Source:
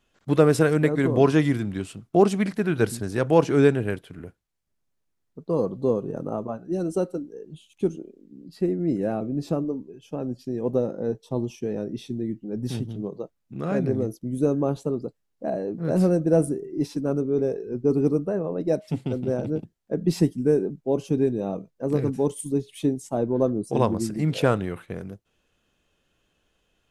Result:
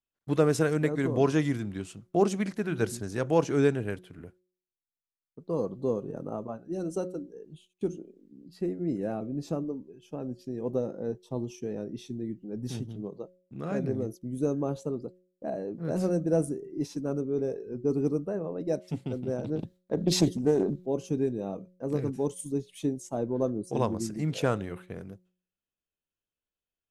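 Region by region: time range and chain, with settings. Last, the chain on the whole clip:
19.44–20.86 bell 3800 Hz +10 dB 0.37 oct + transient shaper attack +4 dB, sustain +10 dB + Doppler distortion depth 0.31 ms
whole clip: gate with hold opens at -43 dBFS; de-hum 181.9 Hz, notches 3; dynamic EQ 6400 Hz, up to +7 dB, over -58 dBFS, Q 3; gain -6 dB

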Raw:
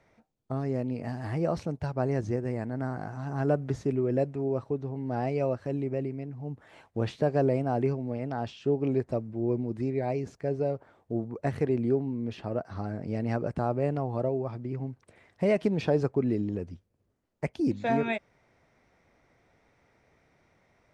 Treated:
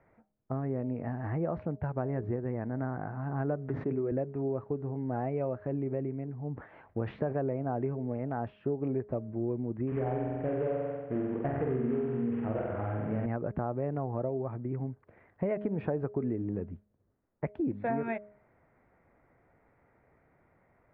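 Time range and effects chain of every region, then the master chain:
3.69–4.12 HPF 140 Hz + notches 50/100/150/200/250/300 Hz + sustainer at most 94 dB/s
6.52–7.53 high shelf 3600 Hz +8 dB + sustainer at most 110 dB/s
9.87–13.26 CVSD 16 kbps + flutter echo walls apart 8 m, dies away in 1.2 s
whole clip: LPF 1900 Hz 24 dB/oct; de-hum 208 Hz, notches 3; compressor 5:1, threshold -28 dBFS

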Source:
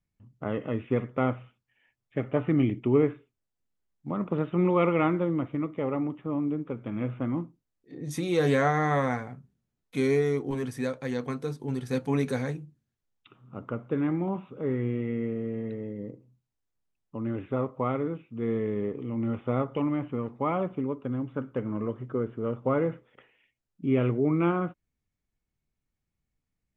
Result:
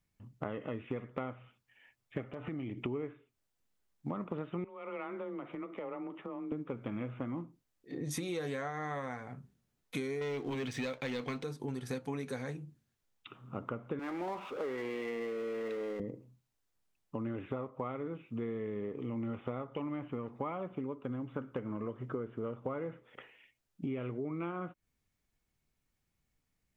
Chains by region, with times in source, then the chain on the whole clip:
2.26–2.81 compressor, threshold -37 dBFS + hard clip -28.5 dBFS
4.64–6.52 tone controls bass -11 dB, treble -8 dB + compressor, threshold -41 dBFS + frequency shift +21 Hz
10.21–11.44 LPF 7400 Hz 24 dB/oct + band shelf 2900 Hz +8 dB 1.2 oct + sample leveller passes 2
13.99–16 HPF 490 Hz + power-law curve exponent 0.7
whole clip: low shelf 390 Hz -5 dB; compressor 12:1, threshold -40 dBFS; gain +5.5 dB

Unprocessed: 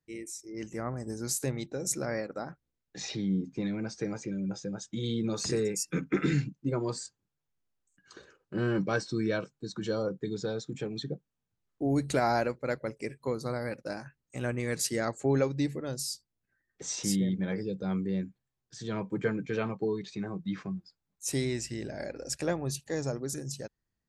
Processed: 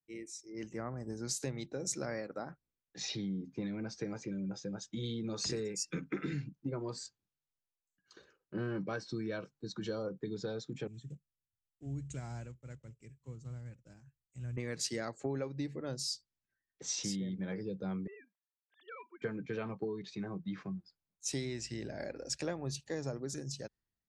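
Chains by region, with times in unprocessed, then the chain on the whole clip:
10.87–14.57 block floating point 5-bit + EQ curve 120 Hz 0 dB, 240 Hz -12 dB, 600 Hz -21 dB, 1900 Hz -17 dB, 3000 Hz -12 dB, 4500 Hz -22 dB, 7600 Hz +3 dB, 11000 Hz -24 dB
18.07–19.22 sine-wave speech + Bessel high-pass 860 Hz, order 4 + core saturation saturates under 310 Hz
whole clip: Chebyshev low-pass 5300 Hz, order 2; compressor 6:1, threshold -33 dBFS; three-band expander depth 40%; gain -1.5 dB

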